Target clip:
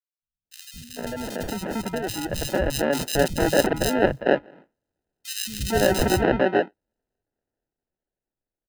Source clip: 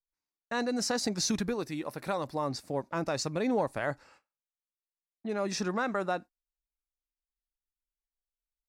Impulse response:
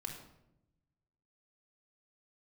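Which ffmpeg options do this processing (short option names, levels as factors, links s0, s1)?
-filter_complex "[0:a]acrossover=split=210[s0][s1];[s0]equalizer=f=110:w=0.57:g=8[s2];[s1]dynaudnorm=f=370:g=11:m=6.31[s3];[s2][s3]amix=inputs=2:normalize=0,acrusher=samples=39:mix=1:aa=0.000001,asettb=1/sr,asplit=3[s4][s5][s6];[s4]atrim=end=3.334[s7];[s5]atrim=start=3.33:end=3.81,asetpts=PTS-STARTPTS,afade=t=in:d=0.004:c=qsin,afade=t=out:st=0.476:d=0.004:c=qsin,aeval=exprs='0.596*(cos(1*acos(clip(val(0)/0.596,-1,1)))-cos(1*PI/2))+0.133*(cos(3*acos(clip(val(0)/0.596,-1,1)))-cos(3*PI/2))':c=same[s8];[s6]atrim=start=3.806[s9];[s7][s8]acrossfade=d=0.004:c1=hsin:c2=qsin[s10];[s10][s9]acrossfade=d=0.004:c1=qsin:c2=hsin,acrossover=split=170|2700[s11][s12][s13];[s11]adelay=220[s14];[s12]adelay=450[s15];[s14][s15][s13]amix=inputs=3:normalize=0,volume=0.891"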